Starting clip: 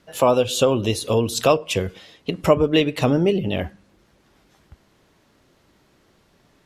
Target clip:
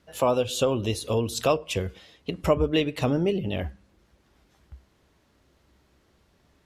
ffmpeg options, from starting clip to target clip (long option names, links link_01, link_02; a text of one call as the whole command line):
ffmpeg -i in.wav -af "equalizer=frequency=65:width_type=o:width=0.54:gain=13.5,volume=-6dB" out.wav